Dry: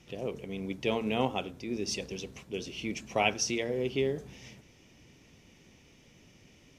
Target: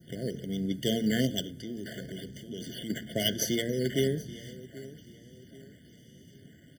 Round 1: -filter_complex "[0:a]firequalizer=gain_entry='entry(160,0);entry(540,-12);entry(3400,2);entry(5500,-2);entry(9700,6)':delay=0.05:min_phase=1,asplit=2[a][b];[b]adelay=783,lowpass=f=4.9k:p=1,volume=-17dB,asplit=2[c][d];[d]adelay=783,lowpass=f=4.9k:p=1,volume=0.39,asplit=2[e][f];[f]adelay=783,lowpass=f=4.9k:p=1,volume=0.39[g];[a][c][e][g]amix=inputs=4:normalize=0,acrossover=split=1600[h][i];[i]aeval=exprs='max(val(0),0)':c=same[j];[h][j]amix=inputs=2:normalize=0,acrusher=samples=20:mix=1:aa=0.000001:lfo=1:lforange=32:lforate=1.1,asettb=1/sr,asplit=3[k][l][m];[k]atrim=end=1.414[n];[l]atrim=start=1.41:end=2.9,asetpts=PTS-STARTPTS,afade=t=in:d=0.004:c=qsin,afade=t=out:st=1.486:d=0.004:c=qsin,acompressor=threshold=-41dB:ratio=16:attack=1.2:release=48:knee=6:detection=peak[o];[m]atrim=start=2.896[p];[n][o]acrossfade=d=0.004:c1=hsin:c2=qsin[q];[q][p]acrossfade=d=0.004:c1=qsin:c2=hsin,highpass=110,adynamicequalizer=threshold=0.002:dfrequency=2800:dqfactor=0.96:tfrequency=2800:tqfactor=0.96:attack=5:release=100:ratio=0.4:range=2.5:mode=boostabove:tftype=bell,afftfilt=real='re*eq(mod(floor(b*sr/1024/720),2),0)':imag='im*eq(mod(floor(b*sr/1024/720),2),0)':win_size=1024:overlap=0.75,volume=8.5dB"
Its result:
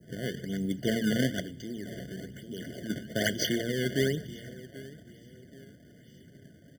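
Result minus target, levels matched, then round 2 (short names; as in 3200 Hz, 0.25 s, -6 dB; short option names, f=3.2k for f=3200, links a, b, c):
decimation with a swept rate: distortion +8 dB
-filter_complex "[0:a]firequalizer=gain_entry='entry(160,0);entry(540,-12);entry(3400,2);entry(5500,-2);entry(9700,6)':delay=0.05:min_phase=1,asplit=2[a][b];[b]adelay=783,lowpass=f=4.9k:p=1,volume=-17dB,asplit=2[c][d];[d]adelay=783,lowpass=f=4.9k:p=1,volume=0.39,asplit=2[e][f];[f]adelay=783,lowpass=f=4.9k:p=1,volume=0.39[g];[a][c][e][g]amix=inputs=4:normalize=0,acrossover=split=1600[h][i];[i]aeval=exprs='max(val(0),0)':c=same[j];[h][j]amix=inputs=2:normalize=0,acrusher=samples=5:mix=1:aa=0.000001:lfo=1:lforange=8:lforate=1.1,asettb=1/sr,asplit=3[k][l][m];[k]atrim=end=1.414[n];[l]atrim=start=1.41:end=2.9,asetpts=PTS-STARTPTS,afade=t=in:d=0.004:c=qsin,afade=t=out:st=1.486:d=0.004:c=qsin,acompressor=threshold=-41dB:ratio=16:attack=1.2:release=48:knee=6:detection=peak[o];[m]atrim=start=2.896[p];[n][o]acrossfade=d=0.004:c1=hsin:c2=qsin[q];[q][p]acrossfade=d=0.004:c1=qsin:c2=hsin,highpass=110,adynamicequalizer=threshold=0.002:dfrequency=2800:dqfactor=0.96:tfrequency=2800:tqfactor=0.96:attack=5:release=100:ratio=0.4:range=2.5:mode=boostabove:tftype=bell,afftfilt=real='re*eq(mod(floor(b*sr/1024/720),2),0)':imag='im*eq(mod(floor(b*sr/1024/720),2),0)':win_size=1024:overlap=0.75,volume=8.5dB"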